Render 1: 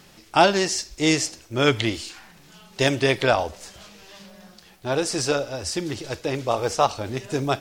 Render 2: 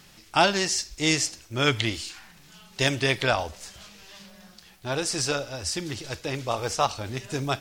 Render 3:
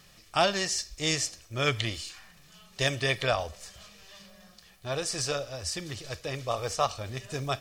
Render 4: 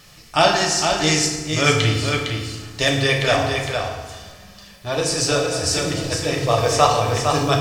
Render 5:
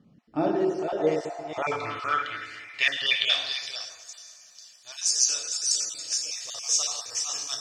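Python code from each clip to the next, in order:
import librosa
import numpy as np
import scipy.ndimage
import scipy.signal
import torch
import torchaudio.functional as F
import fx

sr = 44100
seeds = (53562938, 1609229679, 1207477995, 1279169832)

y1 = fx.peak_eq(x, sr, hz=440.0, db=-6.5, octaves=2.4)
y2 = y1 + 0.42 * np.pad(y1, (int(1.7 * sr / 1000.0), 0))[:len(y1)]
y2 = F.gain(torch.from_numpy(y2), -4.5).numpy()
y3 = fx.rider(y2, sr, range_db=4, speed_s=2.0)
y3 = y3 + 10.0 ** (-5.5 / 20.0) * np.pad(y3, (int(458 * sr / 1000.0), 0))[:len(y3)]
y3 = fx.rev_fdn(y3, sr, rt60_s=1.3, lf_ratio=1.45, hf_ratio=0.65, size_ms=20.0, drr_db=0.0)
y3 = F.gain(torch.from_numpy(y3), 7.0).numpy()
y4 = fx.spec_dropout(y3, sr, seeds[0], share_pct=24)
y4 = fx.echo_wet_bandpass(y4, sr, ms=142, feedback_pct=76, hz=1100.0, wet_db=-15.5)
y4 = fx.filter_sweep_bandpass(y4, sr, from_hz=230.0, to_hz=6300.0, start_s=0.15, end_s=4.0, q=4.4)
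y4 = F.gain(torch.from_numpy(y4), 6.0).numpy()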